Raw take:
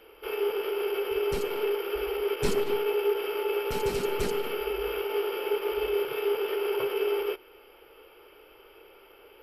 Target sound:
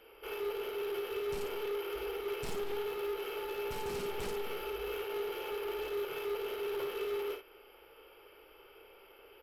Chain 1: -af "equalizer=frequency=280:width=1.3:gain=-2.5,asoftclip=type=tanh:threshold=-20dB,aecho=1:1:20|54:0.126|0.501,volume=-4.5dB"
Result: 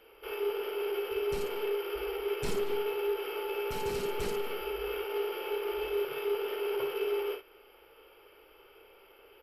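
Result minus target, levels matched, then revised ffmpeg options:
soft clipping: distortion −12 dB
-af "equalizer=frequency=280:width=1.3:gain=-2.5,asoftclip=type=tanh:threshold=-31dB,aecho=1:1:20|54:0.126|0.501,volume=-4.5dB"

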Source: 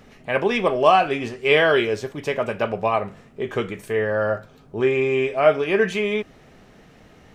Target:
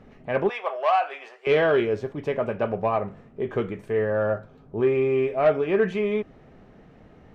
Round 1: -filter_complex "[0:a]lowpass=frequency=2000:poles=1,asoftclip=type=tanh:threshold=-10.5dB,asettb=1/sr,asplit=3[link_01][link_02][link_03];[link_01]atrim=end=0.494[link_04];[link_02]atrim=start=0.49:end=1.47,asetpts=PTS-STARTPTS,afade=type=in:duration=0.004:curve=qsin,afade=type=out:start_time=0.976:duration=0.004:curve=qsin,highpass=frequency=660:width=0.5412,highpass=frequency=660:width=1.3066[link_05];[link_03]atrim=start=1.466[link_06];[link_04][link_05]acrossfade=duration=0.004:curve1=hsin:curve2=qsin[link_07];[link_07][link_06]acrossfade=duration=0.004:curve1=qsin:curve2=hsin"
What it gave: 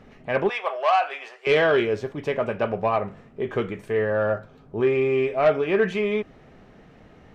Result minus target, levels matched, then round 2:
2,000 Hz band +2.5 dB
-filter_complex "[0:a]lowpass=frequency=970:poles=1,asoftclip=type=tanh:threshold=-10.5dB,asettb=1/sr,asplit=3[link_01][link_02][link_03];[link_01]atrim=end=0.494[link_04];[link_02]atrim=start=0.49:end=1.47,asetpts=PTS-STARTPTS,afade=type=in:duration=0.004:curve=qsin,afade=type=out:start_time=0.976:duration=0.004:curve=qsin,highpass=frequency=660:width=0.5412,highpass=frequency=660:width=1.3066[link_05];[link_03]atrim=start=1.466[link_06];[link_04][link_05]acrossfade=duration=0.004:curve1=hsin:curve2=qsin[link_07];[link_07][link_06]acrossfade=duration=0.004:curve1=qsin:curve2=hsin"

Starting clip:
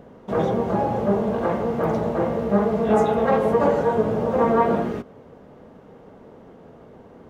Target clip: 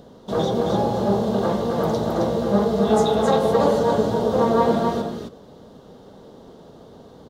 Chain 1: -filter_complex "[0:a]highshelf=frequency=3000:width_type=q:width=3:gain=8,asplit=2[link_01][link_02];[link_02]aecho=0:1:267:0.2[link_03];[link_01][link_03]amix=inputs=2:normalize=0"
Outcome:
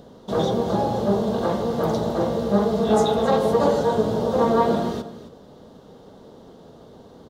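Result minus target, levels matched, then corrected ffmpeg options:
echo-to-direct −9.5 dB
-filter_complex "[0:a]highshelf=frequency=3000:width_type=q:width=3:gain=8,asplit=2[link_01][link_02];[link_02]aecho=0:1:267:0.596[link_03];[link_01][link_03]amix=inputs=2:normalize=0"

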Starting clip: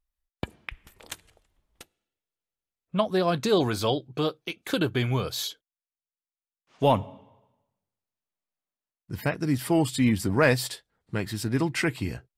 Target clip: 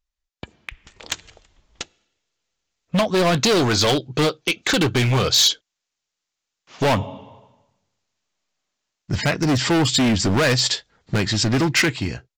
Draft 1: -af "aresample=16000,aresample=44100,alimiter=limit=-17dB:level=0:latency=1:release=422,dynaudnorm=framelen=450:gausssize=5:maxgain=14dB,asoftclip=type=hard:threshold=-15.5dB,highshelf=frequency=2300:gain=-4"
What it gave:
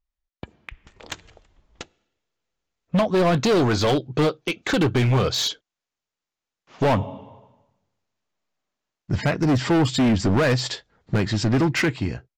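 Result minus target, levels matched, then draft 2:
4,000 Hz band −5.5 dB
-af "aresample=16000,aresample=44100,alimiter=limit=-17dB:level=0:latency=1:release=422,dynaudnorm=framelen=450:gausssize=5:maxgain=14dB,asoftclip=type=hard:threshold=-15.5dB,highshelf=frequency=2300:gain=7"

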